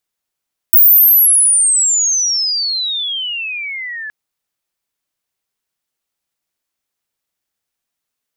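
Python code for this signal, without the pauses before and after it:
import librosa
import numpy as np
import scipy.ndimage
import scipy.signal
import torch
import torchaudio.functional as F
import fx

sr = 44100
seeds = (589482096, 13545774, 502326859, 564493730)

y = fx.chirp(sr, length_s=3.37, from_hz=16000.0, to_hz=1700.0, law='logarithmic', from_db=-3.5, to_db=-23.5)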